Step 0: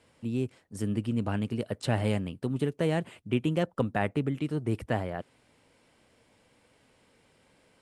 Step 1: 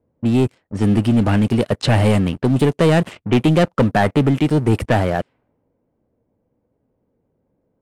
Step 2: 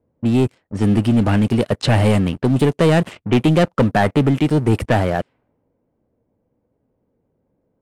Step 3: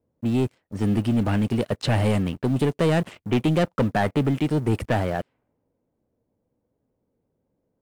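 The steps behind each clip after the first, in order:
sample leveller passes 3; low-pass opened by the level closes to 500 Hz, open at -20 dBFS; gain +5.5 dB
nothing audible
block floating point 7-bit; gain -6.5 dB

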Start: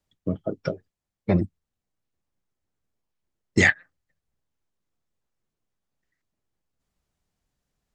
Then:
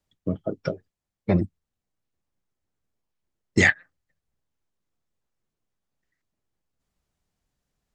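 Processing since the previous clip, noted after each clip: nothing audible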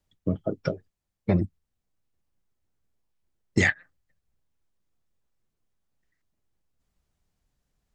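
low shelf 95 Hz +6.5 dB; compressor 2:1, threshold -20 dBFS, peak gain reduction 5 dB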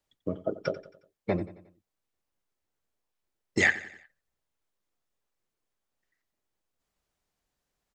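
tone controls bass -12 dB, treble -1 dB; feedback echo 90 ms, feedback 47%, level -16 dB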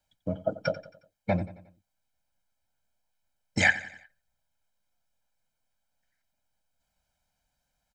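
comb 1.3 ms, depth 94%

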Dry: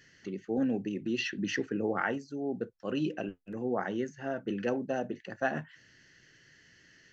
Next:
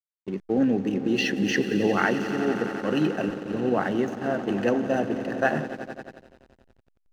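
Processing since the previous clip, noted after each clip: swelling echo 89 ms, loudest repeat 5, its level -14.5 dB; gate -38 dBFS, range -13 dB; backlash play -47 dBFS; gain +7.5 dB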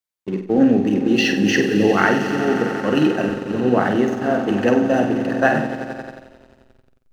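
flutter echo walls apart 8.3 m, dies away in 0.44 s; gain +6 dB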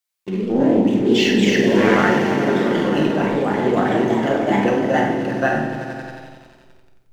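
reverb RT60 0.90 s, pre-delay 6 ms, DRR 2.5 dB; echoes that change speed 0.104 s, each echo +2 st, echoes 2; mismatched tape noise reduction encoder only; gain -4 dB

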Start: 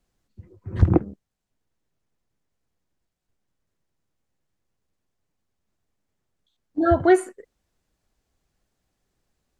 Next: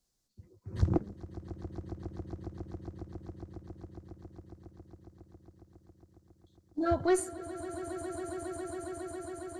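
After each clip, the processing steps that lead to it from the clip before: one diode to ground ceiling -8 dBFS; resonant high shelf 3500 Hz +9.5 dB, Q 1.5; swelling echo 0.137 s, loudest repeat 8, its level -15.5 dB; gain -9 dB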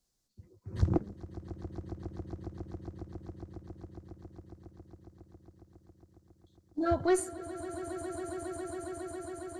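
nothing audible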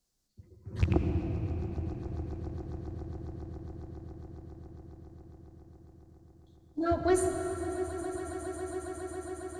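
rattling part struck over -24 dBFS, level -25 dBFS; on a send at -5 dB: low shelf 460 Hz +5 dB + reverb RT60 5.0 s, pre-delay 68 ms

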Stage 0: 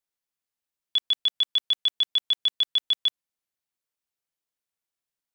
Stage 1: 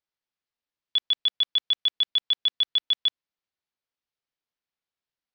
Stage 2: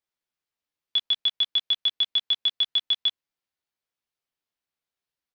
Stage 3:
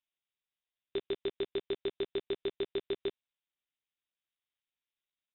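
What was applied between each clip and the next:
LPF 5200 Hz 24 dB/oct
doubler 13 ms -7.5 dB
median filter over 15 samples; inverted band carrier 3800 Hz

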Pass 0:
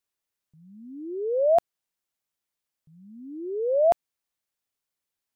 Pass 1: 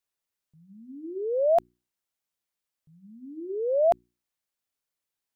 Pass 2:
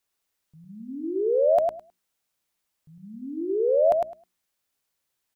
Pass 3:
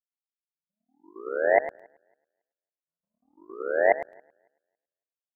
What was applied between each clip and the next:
notches 60/120/180/240/300/360 Hz; gain -1.5 dB
compressor 2:1, threshold -30 dBFS, peak gain reduction 7 dB; feedback echo 0.105 s, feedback 15%, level -4 dB; gain +6.5 dB
narrowing echo 0.277 s, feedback 57%, band-pass 510 Hz, level -11 dB; power-law curve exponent 3; gain +6 dB

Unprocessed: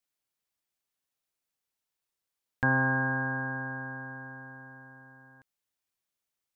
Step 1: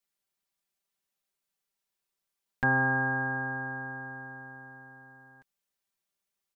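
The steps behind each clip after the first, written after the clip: comb 5.1 ms, depth 70%; gain -1 dB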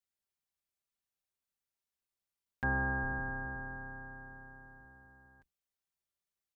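octaver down 2 oct, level +2 dB; gain -8 dB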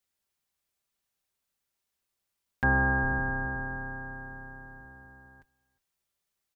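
echo 0.358 s -24 dB; gain +8 dB

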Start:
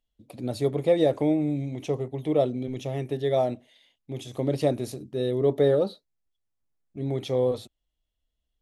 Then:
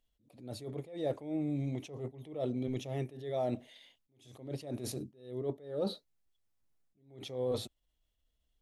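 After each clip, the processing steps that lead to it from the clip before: reverse; compressor 5:1, threshold -34 dBFS, peak gain reduction 16 dB; reverse; attack slew limiter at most 110 dB/s; gain +2 dB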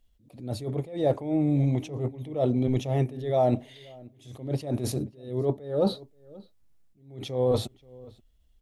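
low shelf 200 Hz +9.5 dB; outdoor echo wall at 91 m, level -21 dB; dynamic EQ 850 Hz, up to +6 dB, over -48 dBFS, Q 1.2; gain +6 dB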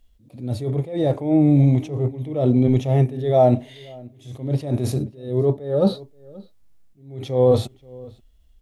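harmonic-percussive split harmonic +9 dB

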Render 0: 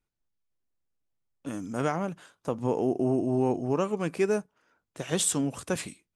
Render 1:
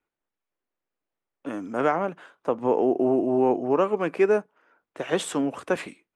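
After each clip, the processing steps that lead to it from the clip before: three-band isolator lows -17 dB, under 260 Hz, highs -17 dB, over 2800 Hz; gain +7 dB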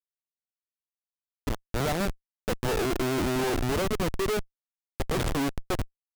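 Schmitt trigger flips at -26.5 dBFS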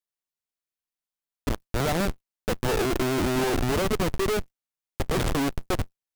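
block floating point 3-bit; gain +2.5 dB

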